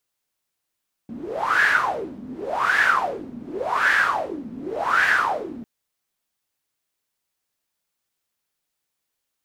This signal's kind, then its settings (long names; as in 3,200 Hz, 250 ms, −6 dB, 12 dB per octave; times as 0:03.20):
wind from filtered noise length 4.55 s, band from 230 Hz, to 1,700 Hz, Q 10, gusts 4, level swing 17.5 dB